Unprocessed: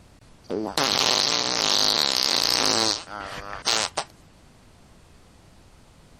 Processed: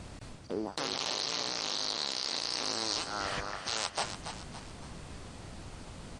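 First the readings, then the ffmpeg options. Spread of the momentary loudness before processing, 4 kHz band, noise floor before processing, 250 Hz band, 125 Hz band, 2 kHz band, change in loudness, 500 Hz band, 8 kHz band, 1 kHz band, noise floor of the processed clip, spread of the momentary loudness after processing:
15 LU, -12.0 dB, -53 dBFS, -9.0 dB, -4.5 dB, -10.0 dB, -12.5 dB, -9.5 dB, -11.5 dB, -10.0 dB, -48 dBFS, 15 LU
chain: -filter_complex "[0:a]areverse,acompressor=threshold=0.0141:ratio=6,areverse,asplit=6[s0][s1][s2][s3][s4][s5];[s1]adelay=282,afreqshift=50,volume=0.355[s6];[s2]adelay=564,afreqshift=100,volume=0.16[s7];[s3]adelay=846,afreqshift=150,volume=0.0716[s8];[s4]adelay=1128,afreqshift=200,volume=0.0324[s9];[s5]adelay=1410,afreqshift=250,volume=0.0146[s10];[s0][s6][s7][s8][s9][s10]amix=inputs=6:normalize=0,aresample=22050,aresample=44100,volume=1.88"

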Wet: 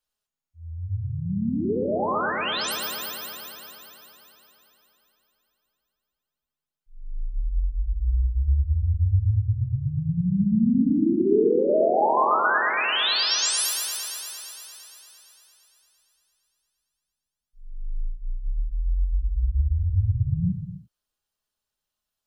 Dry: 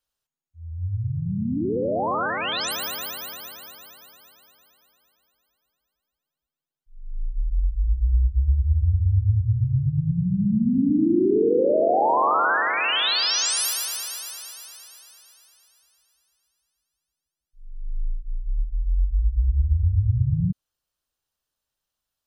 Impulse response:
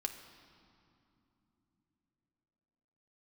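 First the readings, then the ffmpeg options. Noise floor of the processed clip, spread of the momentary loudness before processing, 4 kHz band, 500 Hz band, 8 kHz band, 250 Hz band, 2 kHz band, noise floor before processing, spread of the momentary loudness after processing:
under -85 dBFS, 16 LU, -0.5 dB, -0.5 dB, -1.0 dB, -0.5 dB, -0.5 dB, under -85 dBFS, 17 LU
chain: -filter_complex "[1:a]atrim=start_sample=2205,afade=t=out:st=0.4:d=0.01,atrim=end_sample=18081[s0];[0:a][s0]afir=irnorm=-1:irlink=0,volume=0.891"

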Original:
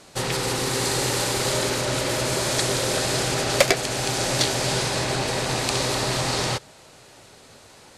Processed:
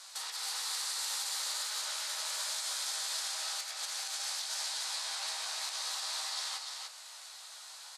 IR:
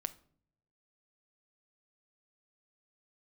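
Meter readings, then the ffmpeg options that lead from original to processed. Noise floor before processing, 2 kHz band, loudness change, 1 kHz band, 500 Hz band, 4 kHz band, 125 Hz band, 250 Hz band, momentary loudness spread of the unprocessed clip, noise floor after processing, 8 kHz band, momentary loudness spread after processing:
-49 dBFS, -15.5 dB, -12.0 dB, -16.5 dB, -31.0 dB, -9.0 dB, under -40 dB, under -40 dB, 4 LU, -50 dBFS, -9.5 dB, 10 LU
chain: -filter_complex "[0:a]highpass=f=900:w=0.5412,highpass=f=900:w=1.3066,highshelf=f=6000:g=-12,acompressor=threshold=0.02:ratio=6,alimiter=level_in=2.66:limit=0.0631:level=0:latency=1:release=143,volume=0.376,aexciter=amount=2.3:drive=8.7:freq=3600,aecho=1:1:295:0.631,asplit=2[s0][s1];[1:a]atrim=start_sample=2205,lowpass=5000,adelay=14[s2];[s1][s2]afir=irnorm=-1:irlink=0,volume=0.668[s3];[s0][s3]amix=inputs=2:normalize=0,volume=0.631"

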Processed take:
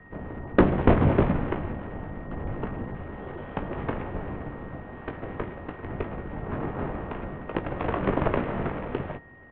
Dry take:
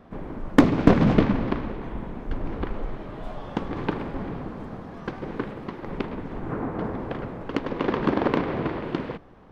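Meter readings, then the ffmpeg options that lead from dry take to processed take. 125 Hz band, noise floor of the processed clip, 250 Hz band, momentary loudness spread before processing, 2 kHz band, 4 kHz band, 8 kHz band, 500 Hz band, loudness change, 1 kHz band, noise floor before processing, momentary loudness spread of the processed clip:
0.0 dB, -43 dBFS, -4.5 dB, 17 LU, -1.5 dB, -7.5 dB, no reading, -1.0 dB, -2.5 dB, -1.0 dB, -41 dBFS, 16 LU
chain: -filter_complex "[0:a]acrossover=split=2400[s0][s1];[s0]aeval=exprs='abs(val(0))':c=same[s2];[s2][s1]amix=inputs=2:normalize=0,equalizer=f=250:w=0.86:g=6.5,aeval=exprs='val(0)+0.00251*sin(2*PI*2100*n/s)':c=same,aemphasis=mode=reproduction:type=75kf,asplit=2[s3][s4];[s4]adelay=19,volume=0.355[s5];[s3][s5]amix=inputs=2:normalize=0,highpass=f=270:t=q:w=0.5412,highpass=f=270:t=q:w=1.307,lowpass=f=3400:t=q:w=0.5176,lowpass=f=3400:t=q:w=0.7071,lowpass=f=3400:t=q:w=1.932,afreqshift=-230,volume=1.26"

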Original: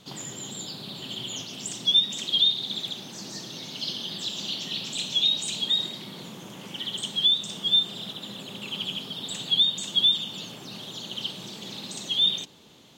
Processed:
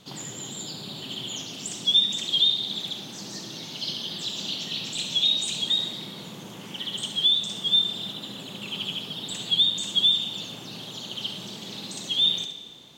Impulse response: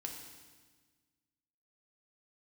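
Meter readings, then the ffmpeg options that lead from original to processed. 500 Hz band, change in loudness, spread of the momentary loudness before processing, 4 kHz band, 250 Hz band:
+0.5 dB, +0.5 dB, 16 LU, +0.5 dB, +1.0 dB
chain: -filter_complex "[0:a]asplit=2[s0][s1];[1:a]atrim=start_sample=2205,adelay=69[s2];[s1][s2]afir=irnorm=-1:irlink=0,volume=0.531[s3];[s0][s3]amix=inputs=2:normalize=0"

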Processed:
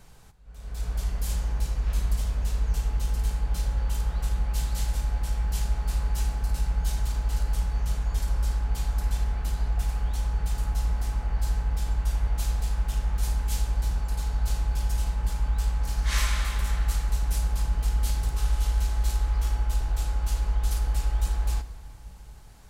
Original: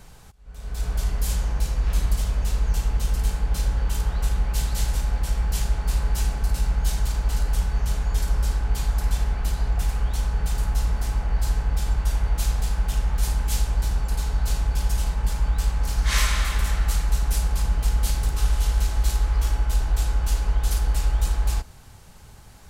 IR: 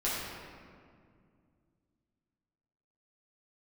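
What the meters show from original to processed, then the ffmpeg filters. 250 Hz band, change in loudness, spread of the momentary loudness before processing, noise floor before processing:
-5.0 dB, -3.5 dB, 2 LU, -45 dBFS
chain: -filter_complex "[0:a]asplit=2[s0][s1];[1:a]atrim=start_sample=2205,asetrate=36603,aresample=44100[s2];[s1][s2]afir=irnorm=-1:irlink=0,volume=0.119[s3];[s0][s3]amix=inputs=2:normalize=0,volume=0.473"

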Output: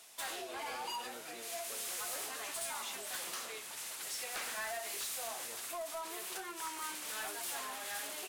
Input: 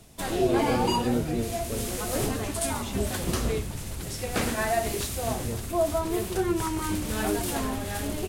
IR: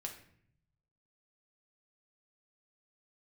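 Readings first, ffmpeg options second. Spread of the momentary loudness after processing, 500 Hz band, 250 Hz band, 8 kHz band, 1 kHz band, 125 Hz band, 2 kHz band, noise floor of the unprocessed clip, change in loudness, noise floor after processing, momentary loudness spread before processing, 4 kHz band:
4 LU, -18.5 dB, -27.5 dB, -6.0 dB, -12.0 dB, -38.5 dB, -7.5 dB, -35 dBFS, -11.5 dB, -47 dBFS, 7 LU, -6.5 dB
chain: -af "acompressor=threshold=0.0316:ratio=4,highpass=1000,asoftclip=type=tanh:threshold=0.015,volume=1.12"

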